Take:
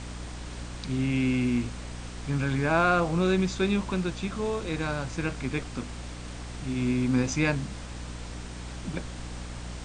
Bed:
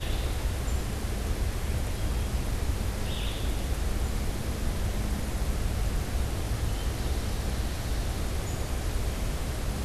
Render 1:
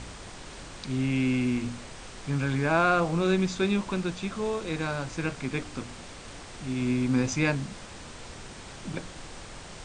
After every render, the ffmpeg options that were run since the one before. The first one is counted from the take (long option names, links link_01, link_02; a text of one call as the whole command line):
ffmpeg -i in.wav -af "bandreject=frequency=60:width_type=h:width=4,bandreject=frequency=120:width_type=h:width=4,bandreject=frequency=180:width_type=h:width=4,bandreject=frequency=240:width_type=h:width=4,bandreject=frequency=300:width_type=h:width=4" out.wav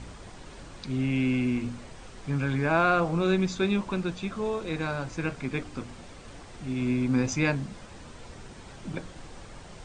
ffmpeg -i in.wav -af "afftdn=noise_reduction=7:noise_floor=-44" out.wav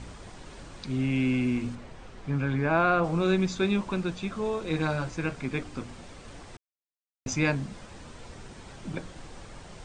ffmpeg -i in.wav -filter_complex "[0:a]asettb=1/sr,asplit=3[link_01][link_02][link_03];[link_01]atrim=end=1.754[link_04];[link_02]atrim=start=1.75:end=3.04,asetpts=PTS-STARTPTS,afade=type=in:duration=0.004:curve=qsin,afade=type=out:start_time=1.286:duration=0.004:curve=qsin,lowpass=frequency=2900:poles=1[link_05];[link_03]atrim=start=3.036[link_06];[link_04][link_05]acrossfade=duration=0.004:curve1=hsin:curve2=qsin[link_07];[link_07][link_06]acrossfade=duration=0.004:curve1=qsin:curve2=hsin,asettb=1/sr,asplit=3[link_08][link_09][link_10];[link_08]atrim=end=4.694[link_11];[link_09]atrim=start=4.69:end=5.1,asetpts=PTS-STARTPTS,afade=type=in:duration=0.004:curve=qsin,afade=type=out:start_time=0.406:duration=0.004:curve=qsin,asplit=2[link_12][link_13];[link_13]adelay=13,volume=-4dB[link_14];[link_12][link_14]amix=inputs=2:normalize=0,atrim=end_sample=18081[link_15];[link_10]atrim=start=5.096[link_16];[link_11][link_15]acrossfade=duration=0.004:curve1=hsin:curve2=qsin[link_17];[link_17][link_16]acrossfade=duration=0.004:curve1=qsin:curve2=hsin,asplit=3[link_18][link_19][link_20];[link_18]atrim=end=6.57,asetpts=PTS-STARTPTS,afade=type=out:start_time=6.566:duration=0.004:curve=hsin[link_21];[link_19]atrim=start=6.57:end=7.26,asetpts=PTS-STARTPTS,volume=0[link_22];[link_20]atrim=start=7.26,asetpts=PTS-STARTPTS,afade=type=in:duration=0.004:curve=hsin[link_23];[link_21][link_22][link_23]concat=n=3:v=0:a=1" out.wav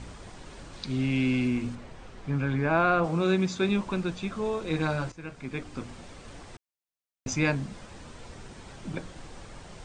ffmpeg -i in.wav -filter_complex "[0:a]asettb=1/sr,asplit=3[link_01][link_02][link_03];[link_01]atrim=end=0.734[link_04];[link_02]atrim=start=0.73:end=1.48,asetpts=PTS-STARTPTS,afade=type=in:duration=0.004:curve=qsin,afade=type=out:start_time=0.746:duration=0.004:curve=qsin,equalizer=frequency=4200:width=1.5:gain=5.5[link_05];[link_03]atrim=start=1.476[link_06];[link_04][link_05]acrossfade=duration=0.004:curve1=hsin:curve2=qsin[link_07];[link_07][link_06]acrossfade=duration=0.004:curve1=qsin:curve2=hsin,asettb=1/sr,asplit=3[link_08][link_09][link_10];[link_08]atrim=end=3.074[link_11];[link_09]atrim=start=3.07:end=3.69,asetpts=PTS-STARTPTS,afade=type=in:duration=0.004:curve=qsin,afade=type=out:start_time=0.616:duration=0.004:curve=qsin,highpass=89[link_12];[link_10]atrim=start=3.686[link_13];[link_11][link_12]acrossfade=duration=0.004:curve1=hsin:curve2=qsin[link_14];[link_14][link_13]acrossfade=duration=0.004:curve1=qsin:curve2=hsin,asplit=2[link_15][link_16];[link_15]atrim=end=5.12,asetpts=PTS-STARTPTS,afade=type=out:start_time=5.116:duration=0.004:curve=hsin:silence=0.177828[link_17];[link_16]atrim=start=5.12,asetpts=PTS-STARTPTS,afade=type=in:duration=0.73:silence=0.177828[link_18];[link_17][link_18]concat=n=2:v=0:a=1" out.wav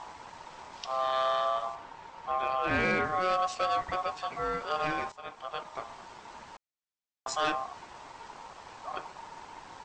ffmpeg -i in.wav -af "aresample=16000,asoftclip=type=hard:threshold=-19.5dB,aresample=44100,aeval=exprs='val(0)*sin(2*PI*920*n/s)':channel_layout=same" out.wav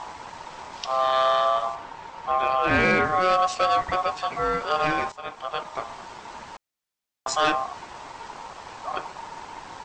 ffmpeg -i in.wav -af "volume=7.5dB" out.wav